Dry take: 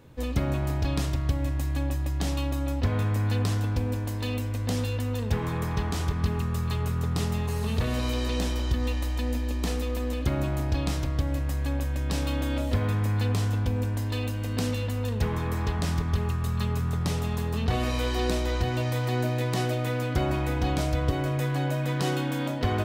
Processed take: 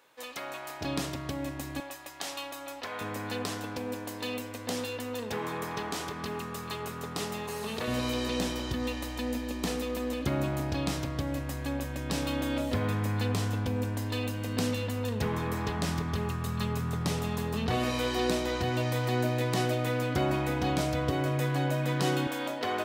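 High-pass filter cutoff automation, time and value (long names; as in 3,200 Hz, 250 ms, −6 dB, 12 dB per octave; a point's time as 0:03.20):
820 Hz
from 0:00.81 210 Hz
from 0:01.80 710 Hz
from 0:03.01 300 Hz
from 0:07.88 130 Hz
from 0:22.27 400 Hz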